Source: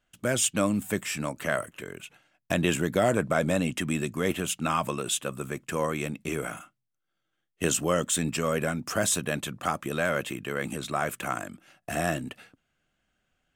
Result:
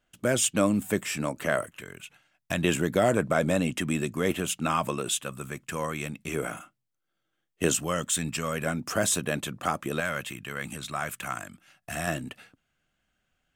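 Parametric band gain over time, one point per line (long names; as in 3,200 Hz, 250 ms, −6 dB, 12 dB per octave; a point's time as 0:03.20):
parametric band 400 Hz 1.9 octaves
+3 dB
from 0:01.67 −6.5 dB
from 0:02.64 +1 dB
from 0:05.12 −5.5 dB
from 0:06.34 +2.5 dB
from 0:07.75 −6.5 dB
from 0:08.66 +1 dB
from 0:10.00 −9.5 dB
from 0:12.07 −2.5 dB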